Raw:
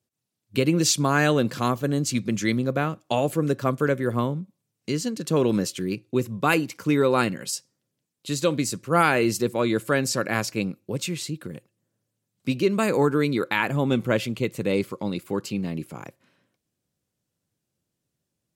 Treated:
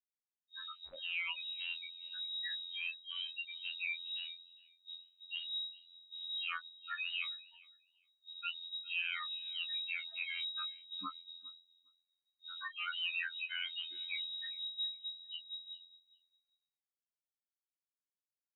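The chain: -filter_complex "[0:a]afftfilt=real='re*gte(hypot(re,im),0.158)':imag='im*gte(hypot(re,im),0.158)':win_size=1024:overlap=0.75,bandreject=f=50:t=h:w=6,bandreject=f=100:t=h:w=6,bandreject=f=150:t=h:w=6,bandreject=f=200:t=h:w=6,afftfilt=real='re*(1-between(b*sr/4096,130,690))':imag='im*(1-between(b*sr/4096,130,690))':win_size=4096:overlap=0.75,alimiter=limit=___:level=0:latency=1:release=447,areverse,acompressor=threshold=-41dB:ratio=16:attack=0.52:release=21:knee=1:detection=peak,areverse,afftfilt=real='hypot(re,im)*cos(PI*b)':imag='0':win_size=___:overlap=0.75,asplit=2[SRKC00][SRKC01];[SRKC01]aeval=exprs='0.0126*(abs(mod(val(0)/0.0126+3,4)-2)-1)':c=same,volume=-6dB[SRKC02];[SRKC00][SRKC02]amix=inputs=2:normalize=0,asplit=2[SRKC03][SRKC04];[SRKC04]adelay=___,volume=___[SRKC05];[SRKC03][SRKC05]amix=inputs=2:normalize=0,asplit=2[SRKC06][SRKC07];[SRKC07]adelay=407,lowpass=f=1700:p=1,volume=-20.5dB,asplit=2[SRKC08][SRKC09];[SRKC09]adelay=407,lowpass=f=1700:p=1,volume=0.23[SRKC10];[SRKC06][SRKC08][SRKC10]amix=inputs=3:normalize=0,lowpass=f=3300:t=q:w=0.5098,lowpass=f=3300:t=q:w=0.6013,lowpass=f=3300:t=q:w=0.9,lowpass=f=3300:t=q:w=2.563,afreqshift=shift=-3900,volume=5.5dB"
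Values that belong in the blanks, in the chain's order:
-14.5dB, 2048, 24, -8dB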